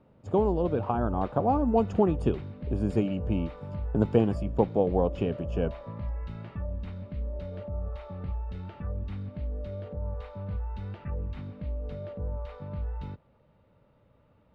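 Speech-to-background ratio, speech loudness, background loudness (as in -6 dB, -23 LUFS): 9.0 dB, -28.0 LUFS, -37.0 LUFS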